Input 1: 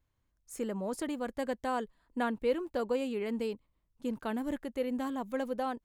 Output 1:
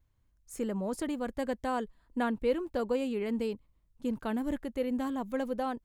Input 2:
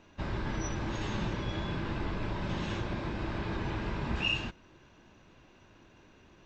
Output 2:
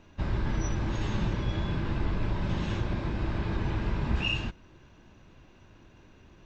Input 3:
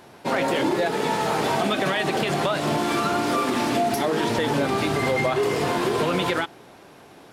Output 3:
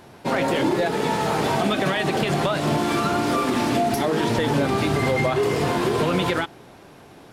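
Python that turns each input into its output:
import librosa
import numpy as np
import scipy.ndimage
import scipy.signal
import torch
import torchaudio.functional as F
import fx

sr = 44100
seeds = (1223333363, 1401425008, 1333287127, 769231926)

y = fx.low_shelf(x, sr, hz=160.0, db=8.5)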